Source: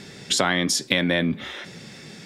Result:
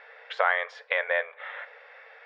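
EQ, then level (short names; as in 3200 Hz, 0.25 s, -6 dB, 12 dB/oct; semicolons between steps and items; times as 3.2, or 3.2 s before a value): brick-wall FIR high-pass 440 Hz; LPF 1900 Hz 24 dB/oct; tilt +2.5 dB/oct; 0.0 dB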